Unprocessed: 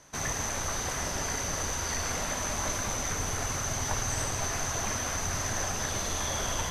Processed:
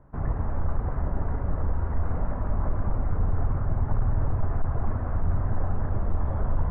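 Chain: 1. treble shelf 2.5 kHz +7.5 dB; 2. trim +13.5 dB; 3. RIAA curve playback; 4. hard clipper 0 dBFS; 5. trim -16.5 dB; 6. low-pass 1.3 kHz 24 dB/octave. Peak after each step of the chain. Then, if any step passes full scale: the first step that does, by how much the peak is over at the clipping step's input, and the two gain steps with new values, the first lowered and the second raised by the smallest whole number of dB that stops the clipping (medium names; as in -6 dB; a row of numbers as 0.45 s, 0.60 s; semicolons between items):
-13.0 dBFS, +0.5 dBFS, +8.0 dBFS, 0.0 dBFS, -16.5 dBFS, -16.0 dBFS; step 2, 8.0 dB; step 2 +5.5 dB, step 5 -8.5 dB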